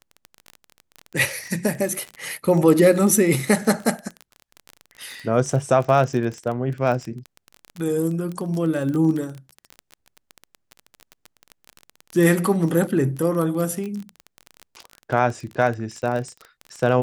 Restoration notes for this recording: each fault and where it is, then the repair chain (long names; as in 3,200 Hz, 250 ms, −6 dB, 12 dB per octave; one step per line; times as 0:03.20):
surface crackle 24 per second −26 dBFS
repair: click removal